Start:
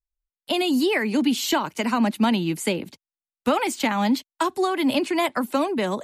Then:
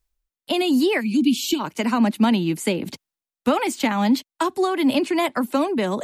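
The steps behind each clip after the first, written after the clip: time-frequency box 1.00–1.60 s, 380–2200 Hz -22 dB; peaking EQ 250 Hz +3 dB 1.8 oct; reverse; upward compressor, threshold -25 dBFS; reverse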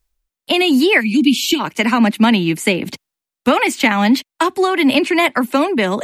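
dynamic bell 2.2 kHz, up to +8 dB, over -43 dBFS, Q 1.3; trim +5 dB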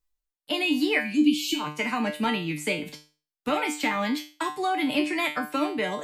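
feedback comb 150 Hz, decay 0.35 s, harmonics all, mix 90%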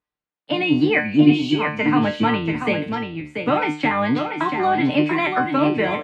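octave divider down 1 oct, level -5 dB; band-pass 140–2300 Hz; delay 686 ms -6.5 dB; trim +7 dB

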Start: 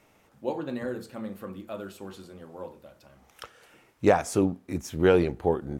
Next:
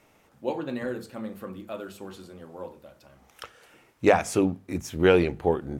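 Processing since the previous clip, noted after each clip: hum notches 50/100/150/200 Hz; dynamic bell 2.5 kHz, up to +6 dB, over -49 dBFS, Q 1.5; trim +1 dB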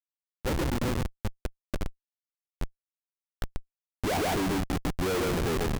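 on a send: feedback delay 139 ms, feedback 30%, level -5 dB; on the sum: Schmitt trigger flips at -27.5 dBFS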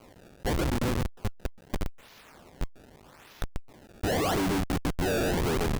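jump at every zero crossing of -41 dBFS; decimation with a swept rate 24×, swing 160% 0.82 Hz

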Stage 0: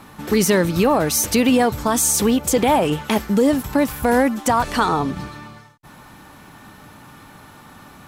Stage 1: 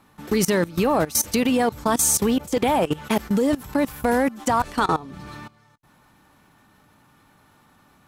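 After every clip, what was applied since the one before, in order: level held to a coarse grid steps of 19 dB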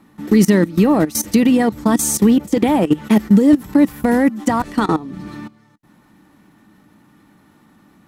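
small resonant body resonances 210/300/1900 Hz, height 12 dB, ringing for 45 ms

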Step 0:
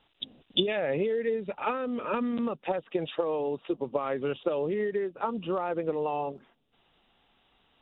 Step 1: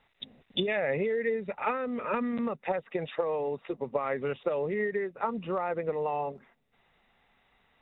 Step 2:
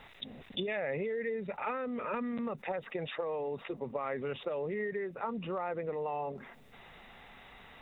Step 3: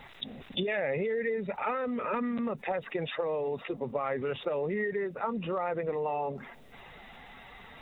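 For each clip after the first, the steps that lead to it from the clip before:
graphic EQ with 31 bands 315 Hz -9 dB, 2 kHz +9 dB, 3.15 kHz -10 dB
level flattener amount 50%; trim -7.5 dB
coarse spectral quantiser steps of 15 dB; trim +4.5 dB

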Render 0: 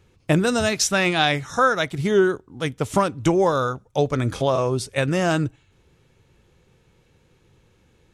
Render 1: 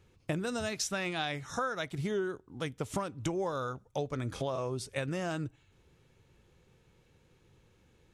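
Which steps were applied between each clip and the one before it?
compression 3:1, threshold -27 dBFS, peak gain reduction 11 dB; trim -6 dB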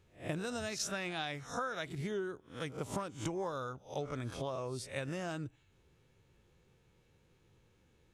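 reverse spectral sustain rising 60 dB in 0.31 s; trim -5 dB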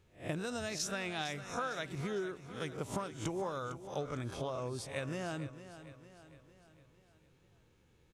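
feedback delay 455 ms, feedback 50%, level -13 dB

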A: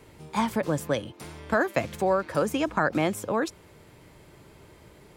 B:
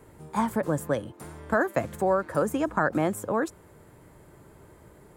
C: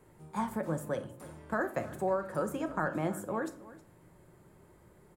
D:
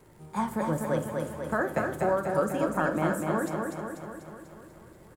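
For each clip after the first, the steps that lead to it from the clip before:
high-order bell 3.6 kHz -9.5 dB
delay 315 ms -18 dB; reverberation RT60 0.50 s, pre-delay 6 ms, DRR 7 dB; trim -8.5 dB
crackle 180 per s -56 dBFS; on a send: feedback delay 245 ms, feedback 59%, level -4 dB; on the sum: trim +4 dB

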